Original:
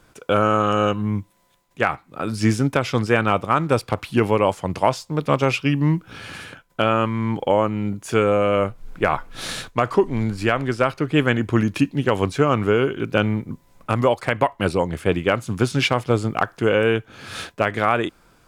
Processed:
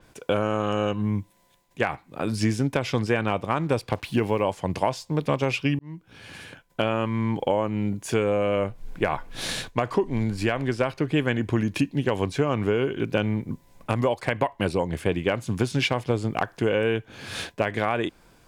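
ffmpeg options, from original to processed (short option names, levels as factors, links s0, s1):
-filter_complex "[0:a]asplit=3[s0][s1][s2];[s0]afade=t=out:st=3.91:d=0.02[s3];[s1]acrusher=bits=7:mix=0:aa=0.5,afade=t=in:st=3.91:d=0.02,afade=t=out:st=4.42:d=0.02[s4];[s2]afade=t=in:st=4.42:d=0.02[s5];[s3][s4][s5]amix=inputs=3:normalize=0,asplit=2[s6][s7];[s6]atrim=end=5.79,asetpts=PTS-STARTPTS,afade=t=out:st=5.786:d=0.004:c=hsin[s8];[s7]atrim=start=5.79,asetpts=PTS-STARTPTS,afade=t=in:d=1.1[s9];[s8][s9]concat=n=2:v=0:a=1,equalizer=f=1300:t=o:w=0.23:g=-9.5,acompressor=threshold=0.0891:ratio=2.5,adynamicequalizer=threshold=0.00631:dfrequency=6100:dqfactor=0.7:tfrequency=6100:tqfactor=0.7:attack=5:release=100:ratio=0.375:range=2:mode=cutabove:tftype=highshelf"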